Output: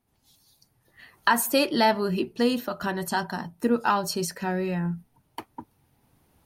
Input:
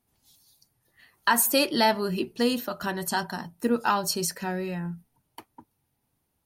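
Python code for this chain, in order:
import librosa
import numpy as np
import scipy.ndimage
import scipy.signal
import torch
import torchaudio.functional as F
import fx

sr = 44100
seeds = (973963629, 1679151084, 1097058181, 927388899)

y = fx.recorder_agc(x, sr, target_db=-18.0, rise_db_per_s=6.2, max_gain_db=30)
y = fx.high_shelf(y, sr, hz=4000.0, db=-7.0)
y = F.gain(torch.from_numpy(y), 1.5).numpy()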